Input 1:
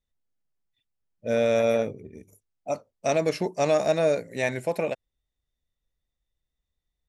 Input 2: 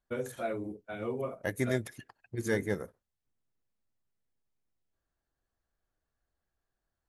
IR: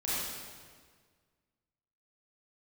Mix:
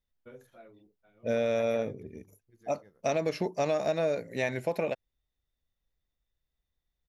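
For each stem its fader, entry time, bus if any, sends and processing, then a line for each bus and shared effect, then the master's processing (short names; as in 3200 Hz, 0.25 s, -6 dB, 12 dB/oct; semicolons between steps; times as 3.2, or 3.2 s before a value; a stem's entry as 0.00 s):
-1.0 dB, 0.00 s, no send, dry
-14.5 dB, 0.15 s, no send, auto duck -13 dB, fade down 0.90 s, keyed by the first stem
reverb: off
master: bell 8500 Hz -14 dB 0.4 oct; compressor 4:1, threshold -25 dBFS, peak gain reduction 6.5 dB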